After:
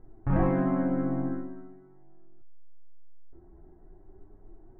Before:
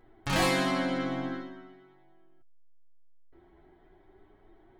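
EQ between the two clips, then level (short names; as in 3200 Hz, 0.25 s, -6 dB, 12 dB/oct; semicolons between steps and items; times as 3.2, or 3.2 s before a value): LPF 1700 Hz 24 dB/oct; tilt -4.5 dB/oct; low shelf 81 Hz -8 dB; -4.0 dB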